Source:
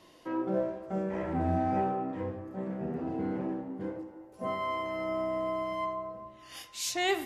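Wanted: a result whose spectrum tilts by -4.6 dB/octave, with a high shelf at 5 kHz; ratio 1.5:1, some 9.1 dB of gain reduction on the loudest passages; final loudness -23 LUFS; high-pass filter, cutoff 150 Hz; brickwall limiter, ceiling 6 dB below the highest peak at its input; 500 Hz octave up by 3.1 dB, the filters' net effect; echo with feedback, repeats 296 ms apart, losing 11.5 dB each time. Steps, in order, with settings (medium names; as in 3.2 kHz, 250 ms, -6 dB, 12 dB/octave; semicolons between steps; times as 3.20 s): high-pass 150 Hz; peaking EQ 500 Hz +4.5 dB; treble shelf 5 kHz -9 dB; compression 1.5:1, threshold -48 dBFS; peak limiter -31 dBFS; feedback delay 296 ms, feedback 27%, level -11.5 dB; trim +17 dB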